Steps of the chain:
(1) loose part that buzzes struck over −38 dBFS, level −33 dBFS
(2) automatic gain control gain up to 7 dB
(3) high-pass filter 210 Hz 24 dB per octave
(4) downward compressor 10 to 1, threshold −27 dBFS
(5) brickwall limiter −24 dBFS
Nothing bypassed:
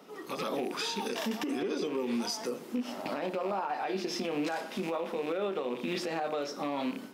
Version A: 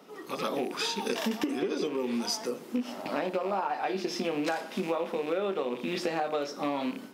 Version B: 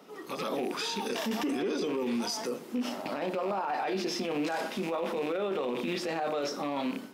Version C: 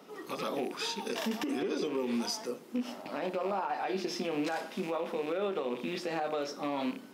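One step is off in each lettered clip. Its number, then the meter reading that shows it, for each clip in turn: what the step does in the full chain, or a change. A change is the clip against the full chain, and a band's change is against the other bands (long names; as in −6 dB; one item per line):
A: 5, change in crest factor +5.5 dB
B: 4, average gain reduction 7.0 dB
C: 2, change in momentary loudness spread +1 LU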